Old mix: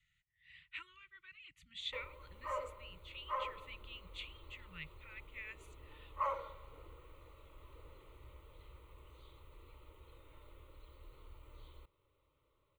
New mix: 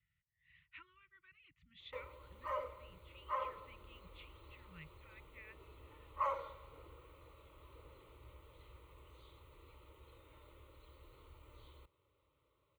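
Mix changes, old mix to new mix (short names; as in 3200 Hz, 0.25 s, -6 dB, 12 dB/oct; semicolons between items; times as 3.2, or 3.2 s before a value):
speech: add tape spacing loss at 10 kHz 39 dB; master: add HPF 52 Hz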